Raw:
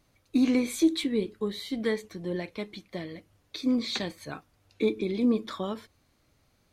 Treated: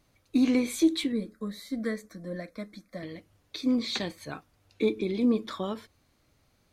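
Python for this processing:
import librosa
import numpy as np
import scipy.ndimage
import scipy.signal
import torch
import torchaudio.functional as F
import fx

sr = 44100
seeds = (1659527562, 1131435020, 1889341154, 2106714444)

y = fx.fixed_phaser(x, sr, hz=580.0, stages=8, at=(1.12, 3.03))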